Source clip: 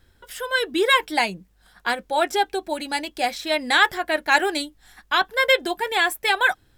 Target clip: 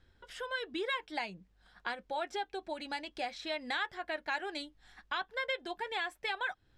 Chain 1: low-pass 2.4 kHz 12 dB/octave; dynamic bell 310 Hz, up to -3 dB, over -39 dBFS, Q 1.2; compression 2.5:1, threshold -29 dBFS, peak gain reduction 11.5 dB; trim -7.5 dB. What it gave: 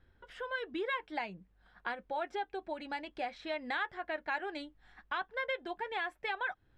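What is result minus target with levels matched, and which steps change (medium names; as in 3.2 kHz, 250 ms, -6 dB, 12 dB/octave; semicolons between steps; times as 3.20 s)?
4 kHz band -5.0 dB
change: low-pass 5.1 kHz 12 dB/octave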